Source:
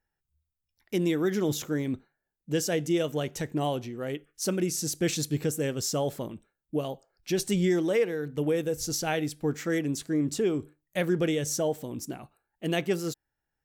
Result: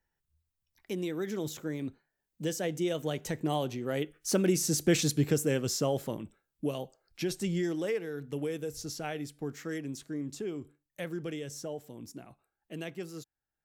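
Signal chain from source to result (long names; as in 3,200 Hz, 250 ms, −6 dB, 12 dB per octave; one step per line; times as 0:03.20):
source passing by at 0:04.85, 11 m/s, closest 7.6 metres
multiband upward and downward compressor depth 40%
level +5.5 dB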